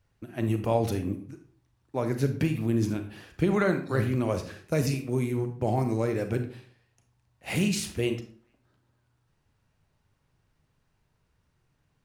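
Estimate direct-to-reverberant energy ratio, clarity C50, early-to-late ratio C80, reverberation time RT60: 7.0 dB, 10.0 dB, 13.5 dB, 0.45 s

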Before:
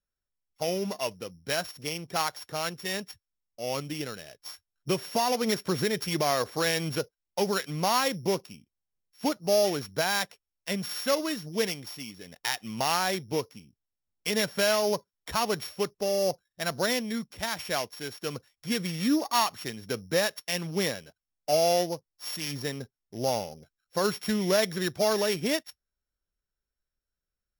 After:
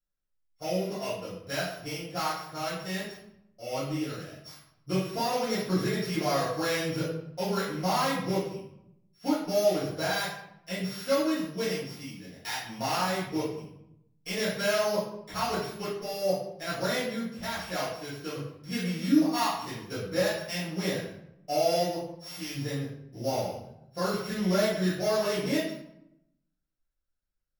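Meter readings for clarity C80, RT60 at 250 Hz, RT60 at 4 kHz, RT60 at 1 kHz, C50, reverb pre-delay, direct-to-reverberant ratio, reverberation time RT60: 5.5 dB, 1.1 s, 0.50 s, 0.80 s, 2.0 dB, 4 ms, −12.0 dB, 0.75 s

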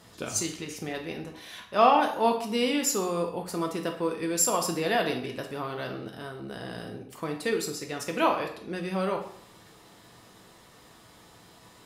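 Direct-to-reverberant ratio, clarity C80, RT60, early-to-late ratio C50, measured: 2.5 dB, 11.5 dB, 0.60 s, 8.0 dB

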